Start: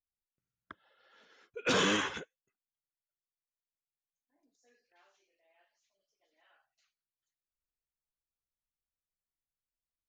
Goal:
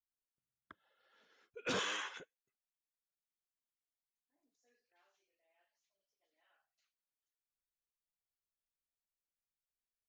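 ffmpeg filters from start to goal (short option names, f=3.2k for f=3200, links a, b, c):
-filter_complex "[0:a]asettb=1/sr,asplit=3[a][b][c];[a]atrim=end=1.794[d];[b]atrim=start=1.79:end=2.2,asetpts=PTS-STARTPTS,afade=t=in:d=0.004:c=qsin,afade=t=out:st=0.406:d=0.004:c=qsin,highpass=720[e];[c]atrim=start=2.196[f];[d][e]acrossfade=d=0.004:c1=hsin:c2=qsin[g];[g][f]acrossfade=d=0.004:c1=qsin:c2=hsin,volume=-8dB"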